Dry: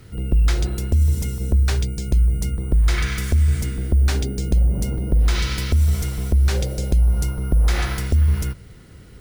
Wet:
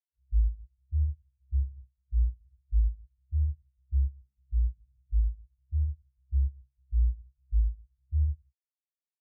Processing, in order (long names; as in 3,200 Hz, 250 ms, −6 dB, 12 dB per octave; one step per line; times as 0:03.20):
every bin expanded away from the loudest bin 4 to 1
level −7.5 dB